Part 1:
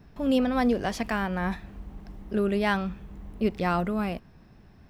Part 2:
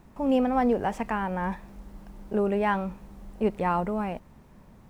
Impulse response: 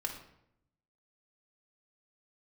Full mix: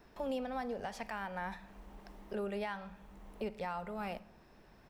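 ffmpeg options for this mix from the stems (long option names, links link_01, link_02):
-filter_complex "[0:a]highpass=frequency=330:width=0.5412,highpass=frequency=330:width=1.3066,volume=-2.5dB,asplit=2[link_01][link_02];[link_02]volume=-18.5dB[link_03];[1:a]adelay=0.6,volume=-13.5dB,asplit=3[link_04][link_05][link_06];[link_05]volume=-10dB[link_07];[link_06]apad=whole_len=216030[link_08];[link_01][link_08]sidechaincompress=threshold=-44dB:ratio=8:attack=16:release=791[link_09];[2:a]atrim=start_sample=2205[link_10];[link_03][link_07]amix=inputs=2:normalize=0[link_11];[link_11][link_10]afir=irnorm=-1:irlink=0[link_12];[link_09][link_04][link_12]amix=inputs=3:normalize=0,alimiter=level_in=5.5dB:limit=-24dB:level=0:latency=1:release=345,volume=-5.5dB"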